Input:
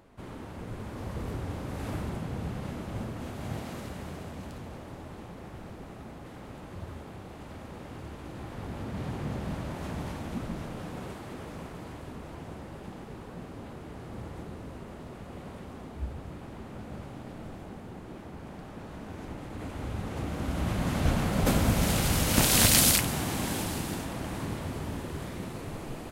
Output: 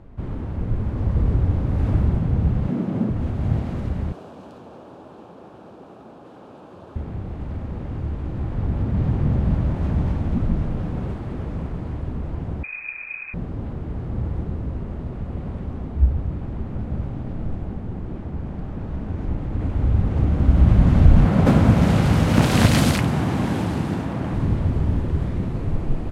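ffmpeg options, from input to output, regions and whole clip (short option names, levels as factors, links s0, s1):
-filter_complex "[0:a]asettb=1/sr,asplit=3[s0][s1][s2];[s0]atrim=end=2.684[s3];[s1]atrim=start=2.68:end=3.1,asetpts=PTS-STARTPTS,afade=t=in:d=0.004:c=qsin,afade=t=out:st=0.416:d=0.004:c=qsin,highpass=f=190:w=0.5412,highpass=f=190:w=1.3066,lowshelf=f=320:g=11[s4];[s2]atrim=start=3.096[s5];[s3][s4]acrossfade=d=0.004:c1=hsin:c2=qsin[s6];[s6][s5]acrossfade=d=0.004:c1=qsin:c2=hsin,asettb=1/sr,asplit=3[s7][s8][s9];[s7]atrim=end=4.124[s10];[s8]atrim=start=4.12:end=6.96,asetpts=PTS-STARTPTS,afade=t=in:d=0.004:c=qsin,afade=t=out:st=2.836:d=0.004:c=qsin,highpass=410,equalizer=f=2000:t=o:w=0.4:g=-13[s11];[s9]atrim=start=6.956[s12];[s10][s11]acrossfade=d=0.004:c1=hsin:c2=qsin[s13];[s13][s12]acrossfade=d=0.004:c1=qsin:c2=hsin,asettb=1/sr,asplit=3[s14][s15][s16];[s14]atrim=end=12.634[s17];[s15]atrim=start=12.63:end=13.34,asetpts=PTS-STARTPTS,afade=t=in:d=0.004:c=qsin,afade=t=out:st=0.706:d=0.004:c=qsin,lowshelf=f=240:t=q:w=1.5:g=11,lowpass=f=2200:t=q:w=0.5098,lowpass=f=2200:t=q:w=0.6013,lowpass=f=2200:t=q:w=0.9,lowpass=f=2200:t=q:w=2.563,afreqshift=-2600[s18];[s16]atrim=start=13.336[s19];[s17][s18]acrossfade=d=0.004:c1=hsin:c2=qsin[s20];[s20][s19]acrossfade=d=0.004:c1=qsin:c2=hsin,asettb=1/sr,asplit=3[s21][s22][s23];[s21]atrim=end=21.254[s24];[s22]atrim=start=21.25:end=24.34,asetpts=PTS-STARTPTS,afade=t=in:d=0.004:c=qsin,afade=t=out:st=3.086:d=0.004:c=qsin,highpass=120,equalizer=f=1200:w=0.61:g=3.5[s25];[s23]atrim=start=24.336[s26];[s24][s25]acrossfade=d=0.004:c1=hsin:c2=qsin[s27];[s27][s26]acrossfade=d=0.004:c1=qsin:c2=hsin,aemphasis=mode=reproduction:type=riaa,alimiter=level_in=1.68:limit=0.891:release=50:level=0:latency=1,volume=0.891"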